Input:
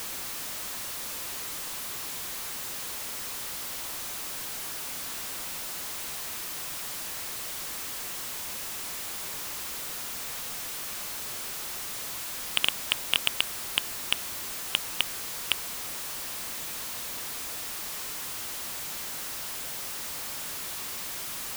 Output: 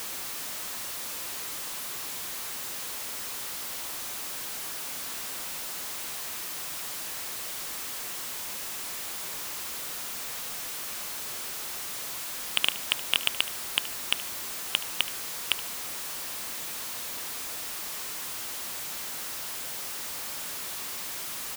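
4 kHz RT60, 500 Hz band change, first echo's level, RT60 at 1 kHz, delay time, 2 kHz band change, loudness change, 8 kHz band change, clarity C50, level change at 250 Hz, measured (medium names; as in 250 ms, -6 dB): no reverb, -0.5 dB, -17.0 dB, no reverb, 74 ms, 0.0 dB, 0.0 dB, 0.0 dB, no reverb, -1.0 dB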